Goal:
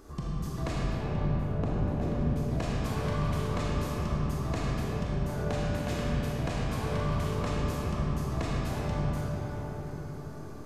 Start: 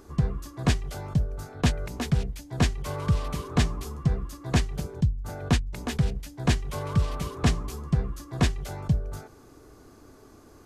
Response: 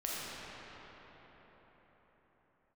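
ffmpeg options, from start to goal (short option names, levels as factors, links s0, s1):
-filter_complex "[0:a]asettb=1/sr,asplit=3[s0][s1][s2];[s0]atrim=end=0.844[s3];[s1]atrim=start=0.84:end=2.21,asetpts=PTS-STARTPTS,afade=t=in:d=0.004:c=qsin,afade=t=out:st=1.366:d=0.004:c=qsin,tiltshelf=f=1200:g=9.5[s4];[s2]atrim=start=2.206[s5];[s3][s4]acrossfade=d=0.004:c1=hsin:c2=qsin[s6];[s6][s5]acrossfade=d=0.004:c1=qsin:c2=hsin,acompressor=threshold=0.0282:ratio=6[s7];[1:a]atrim=start_sample=2205[s8];[s7][s8]afir=irnorm=-1:irlink=0"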